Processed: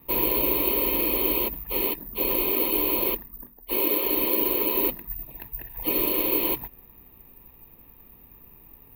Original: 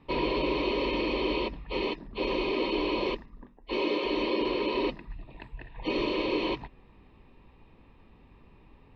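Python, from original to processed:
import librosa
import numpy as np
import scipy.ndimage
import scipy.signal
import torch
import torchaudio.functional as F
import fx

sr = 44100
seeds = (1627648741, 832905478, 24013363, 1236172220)

y = (np.kron(x[::3], np.eye(3)[0]) * 3)[:len(x)]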